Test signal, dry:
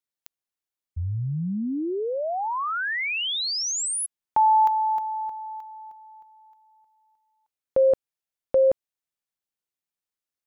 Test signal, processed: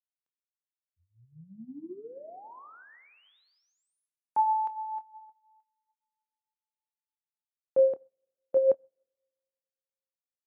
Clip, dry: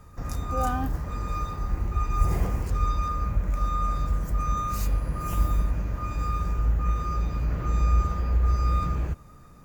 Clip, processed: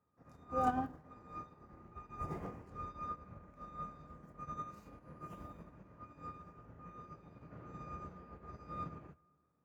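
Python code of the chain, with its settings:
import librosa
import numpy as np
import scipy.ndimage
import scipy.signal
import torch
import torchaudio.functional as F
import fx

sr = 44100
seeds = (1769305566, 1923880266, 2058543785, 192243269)

y = fx.lowpass(x, sr, hz=1200.0, slope=6)
y = fx.chorus_voices(y, sr, voices=4, hz=0.74, base_ms=26, depth_ms=1.9, mix_pct=25)
y = scipy.signal.sosfilt(scipy.signal.butter(2, 180.0, 'highpass', fs=sr, output='sos'), y)
y = fx.rev_plate(y, sr, seeds[0], rt60_s=2.2, hf_ratio=0.7, predelay_ms=0, drr_db=13.0)
y = fx.upward_expand(y, sr, threshold_db=-45.0, expansion=2.5)
y = y * 10.0 ** (1.5 / 20.0)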